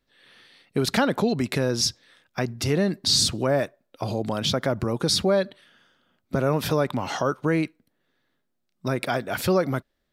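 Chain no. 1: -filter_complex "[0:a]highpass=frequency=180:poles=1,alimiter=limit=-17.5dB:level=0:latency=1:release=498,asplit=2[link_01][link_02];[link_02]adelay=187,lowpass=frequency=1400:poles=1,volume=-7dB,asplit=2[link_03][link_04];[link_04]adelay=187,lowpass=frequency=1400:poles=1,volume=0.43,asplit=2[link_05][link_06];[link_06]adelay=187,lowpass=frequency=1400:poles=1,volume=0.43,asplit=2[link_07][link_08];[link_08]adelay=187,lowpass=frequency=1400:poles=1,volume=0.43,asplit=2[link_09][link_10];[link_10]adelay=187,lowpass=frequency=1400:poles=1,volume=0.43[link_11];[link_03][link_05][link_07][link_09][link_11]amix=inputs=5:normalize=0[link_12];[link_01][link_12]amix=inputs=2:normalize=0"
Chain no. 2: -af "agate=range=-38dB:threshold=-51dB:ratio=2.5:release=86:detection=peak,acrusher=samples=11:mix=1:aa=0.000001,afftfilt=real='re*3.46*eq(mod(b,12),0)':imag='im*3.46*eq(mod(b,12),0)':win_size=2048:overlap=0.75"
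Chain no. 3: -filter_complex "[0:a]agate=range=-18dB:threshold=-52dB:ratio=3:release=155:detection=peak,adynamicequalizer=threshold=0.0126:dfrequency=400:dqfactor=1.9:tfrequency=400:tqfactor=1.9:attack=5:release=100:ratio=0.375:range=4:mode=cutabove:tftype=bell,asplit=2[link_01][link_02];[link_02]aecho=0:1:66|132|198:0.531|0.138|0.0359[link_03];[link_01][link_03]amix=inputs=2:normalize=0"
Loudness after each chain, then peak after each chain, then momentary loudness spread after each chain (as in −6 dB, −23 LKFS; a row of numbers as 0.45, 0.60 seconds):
−30.0, −27.0, −24.0 LKFS; −15.0, −8.0, −7.0 dBFS; 10, 12, 10 LU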